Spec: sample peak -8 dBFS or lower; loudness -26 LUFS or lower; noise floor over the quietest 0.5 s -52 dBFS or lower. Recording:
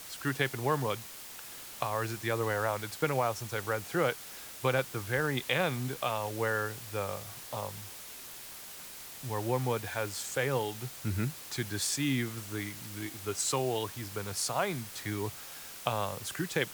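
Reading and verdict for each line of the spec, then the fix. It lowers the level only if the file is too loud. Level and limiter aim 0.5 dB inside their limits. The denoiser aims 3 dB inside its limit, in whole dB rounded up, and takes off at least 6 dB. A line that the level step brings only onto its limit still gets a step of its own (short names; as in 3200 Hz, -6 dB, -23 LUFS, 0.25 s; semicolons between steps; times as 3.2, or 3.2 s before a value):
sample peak -10.5 dBFS: OK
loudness -33.5 LUFS: OK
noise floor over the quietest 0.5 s -46 dBFS: fail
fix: denoiser 9 dB, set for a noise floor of -46 dBFS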